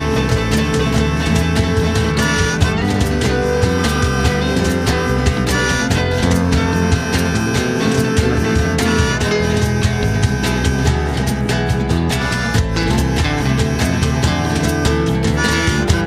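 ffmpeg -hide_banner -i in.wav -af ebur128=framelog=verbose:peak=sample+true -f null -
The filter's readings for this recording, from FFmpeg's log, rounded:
Integrated loudness:
  I:         -16.0 LUFS
  Threshold: -26.0 LUFS
Loudness range:
  LRA:         1.1 LU
  Threshold: -36.0 LUFS
  LRA low:   -16.8 LUFS
  LRA high:  -15.7 LUFS
Sample peak:
  Peak:       -1.1 dBFS
True peak:
  Peak:       -1.0 dBFS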